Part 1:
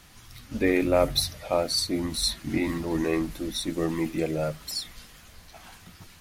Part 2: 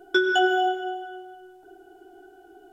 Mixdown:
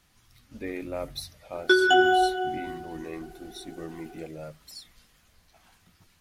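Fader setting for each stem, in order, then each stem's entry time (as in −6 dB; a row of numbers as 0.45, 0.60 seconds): −12.0, +1.5 decibels; 0.00, 1.55 seconds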